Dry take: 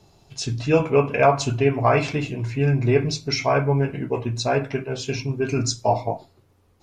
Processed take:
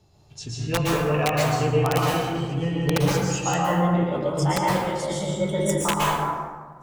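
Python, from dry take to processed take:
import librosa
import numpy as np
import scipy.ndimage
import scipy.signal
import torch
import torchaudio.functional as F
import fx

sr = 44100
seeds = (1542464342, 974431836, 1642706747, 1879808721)

y = fx.pitch_glide(x, sr, semitones=7.0, runs='starting unshifted')
y = fx.peak_eq(y, sr, hz=75.0, db=6.0, octaves=1.4)
y = fx.rider(y, sr, range_db=3, speed_s=2.0)
y = (np.mod(10.0 ** (9.5 / 20.0) * y + 1.0, 2.0) - 1.0) / 10.0 ** (9.5 / 20.0)
y = fx.rev_plate(y, sr, seeds[0], rt60_s=1.5, hf_ratio=0.45, predelay_ms=105, drr_db=-4.0)
y = y * librosa.db_to_amplitude(-6.0)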